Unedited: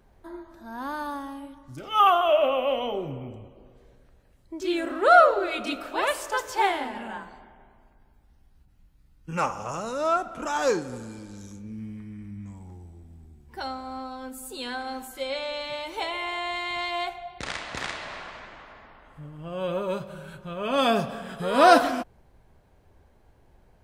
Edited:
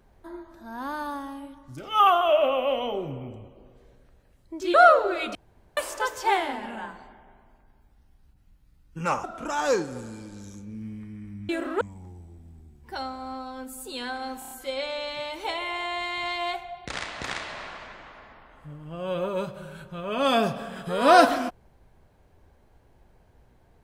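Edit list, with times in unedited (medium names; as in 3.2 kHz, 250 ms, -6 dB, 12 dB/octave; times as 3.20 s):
4.74–5.06 s: move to 12.46 s
5.67–6.09 s: room tone
9.56–10.21 s: delete
15.04 s: stutter 0.03 s, 5 plays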